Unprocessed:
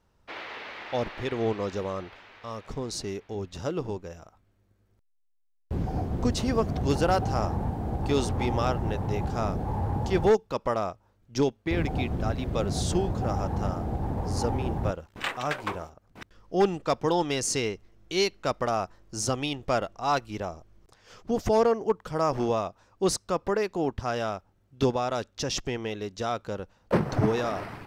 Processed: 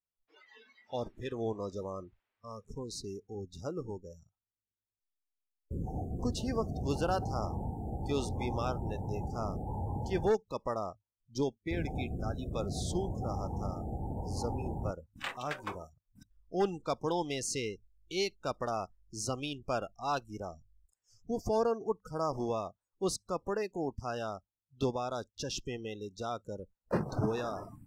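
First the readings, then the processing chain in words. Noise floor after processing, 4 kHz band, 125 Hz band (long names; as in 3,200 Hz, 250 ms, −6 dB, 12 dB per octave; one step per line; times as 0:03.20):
below −85 dBFS, −8.0 dB, −7.5 dB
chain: noise reduction from a noise print of the clip's start 29 dB
level −7.5 dB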